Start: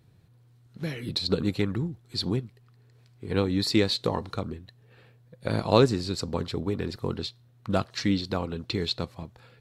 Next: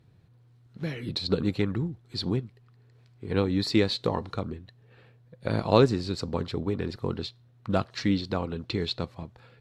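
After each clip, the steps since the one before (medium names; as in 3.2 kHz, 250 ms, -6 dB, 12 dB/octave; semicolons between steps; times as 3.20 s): treble shelf 7.3 kHz -12 dB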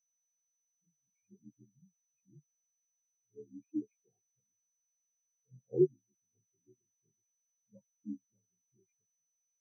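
frequency axis rescaled in octaves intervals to 80%; whistle 6 kHz -34 dBFS; spectral contrast expander 4:1; trim -7.5 dB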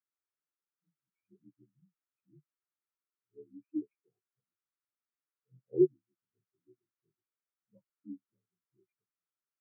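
cabinet simulation 140–2200 Hz, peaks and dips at 220 Hz -8 dB, 340 Hz +5 dB, 510 Hz -4 dB, 730 Hz -9 dB, 1.3 kHz +7 dB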